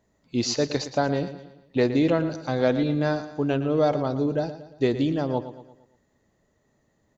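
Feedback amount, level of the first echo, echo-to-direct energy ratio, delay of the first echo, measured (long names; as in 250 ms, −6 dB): 46%, −12.5 dB, −11.5 dB, 115 ms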